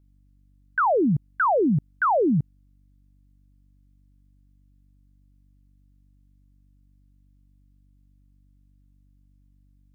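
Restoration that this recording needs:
hum removal 48.3 Hz, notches 6

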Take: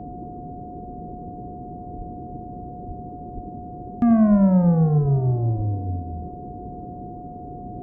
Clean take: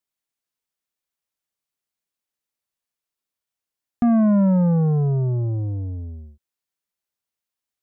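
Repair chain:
notch filter 720 Hz, Q 30
high-pass at the plosives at 0:01.97/0:02.87/0:03.34/0:04.30/0:05.01/0:05.56
noise reduction from a noise print 30 dB
echo removal 86 ms −10 dB

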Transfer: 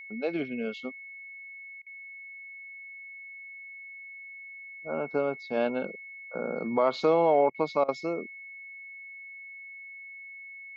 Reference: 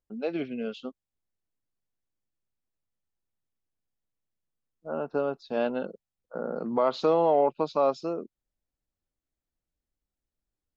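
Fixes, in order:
notch filter 2,200 Hz, Q 30
repair the gap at 0:01.82/0:07.50/0:07.84, 43 ms

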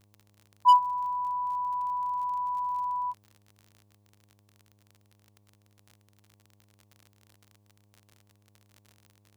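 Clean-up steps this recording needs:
clipped peaks rebuilt −12.5 dBFS
click removal
hum removal 102.5 Hz, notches 11

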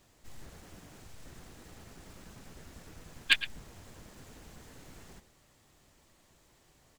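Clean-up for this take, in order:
clipped peaks rebuilt −12 dBFS
echo removal 112 ms −15 dB

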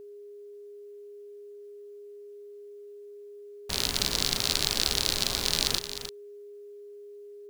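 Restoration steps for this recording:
notch filter 410 Hz, Q 30
echo removal 306 ms −10.5 dB

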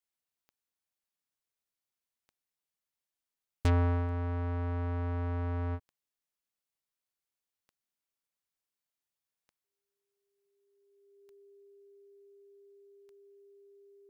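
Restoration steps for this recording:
click removal
notch filter 400 Hz, Q 30

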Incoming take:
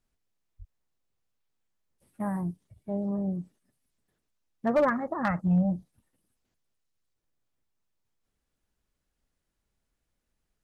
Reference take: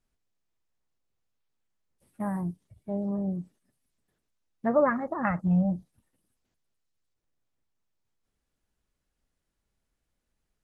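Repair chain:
clipped peaks rebuilt −17.5 dBFS
high-pass at the plosives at 0:00.58

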